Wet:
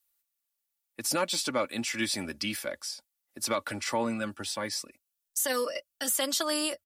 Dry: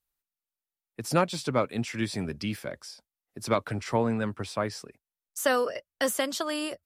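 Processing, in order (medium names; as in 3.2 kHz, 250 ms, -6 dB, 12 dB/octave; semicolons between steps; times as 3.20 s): tilt EQ +2.5 dB/octave; comb 3.5 ms, depth 58%; peak limiter -18 dBFS, peak gain reduction 9 dB; 4.05–6.09 s: Shepard-style phaser rising 1.2 Hz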